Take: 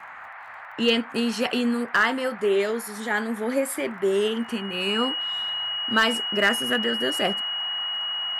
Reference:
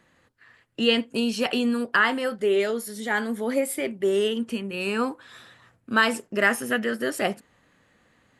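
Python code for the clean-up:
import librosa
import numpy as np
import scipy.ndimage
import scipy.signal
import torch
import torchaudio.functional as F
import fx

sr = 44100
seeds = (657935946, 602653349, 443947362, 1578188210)

y = fx.fix_declip(x, sr, threshold_db=-11.0)
y = fx.fix_declick_ar(y, sr, threshold=6.5)
y = fx.notch(y, sr, hz=2900.0, q=30.0)
y = fx.noise_reduce(y, sr, print_start_s=0.0, print_end_s=0.5, reduce_db=22.0)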